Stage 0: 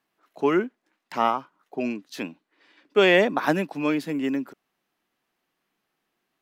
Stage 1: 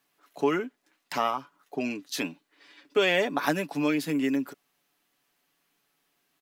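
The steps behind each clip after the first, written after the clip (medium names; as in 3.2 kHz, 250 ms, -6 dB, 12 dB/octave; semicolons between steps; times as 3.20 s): compression 2:1, threshold -28 dBFS, peak gain reduction 8.5 dB; treble shelf 3.3 kHz +9.5 dB; comb 7 ms, depth 44%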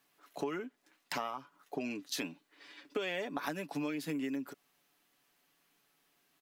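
compression 5:1, threshold -35 dBFS, peak gain reduction 15 dB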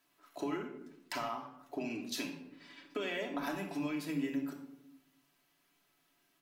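simulated room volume 2200 m³, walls furnished, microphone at 2.9 m; trim -3.5 dB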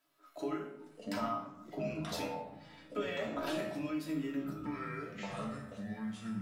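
chord resonator G#2 sus4, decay 0.23 s; ever faster or slower copies 469 ms, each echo -6 st, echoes 2; small resonant body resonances 590/1300 Hz, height 8 dB, ringing for 35 ms; trim +8.5 dB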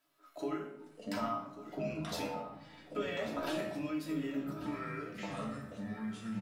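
delay 1140 ms -14 dB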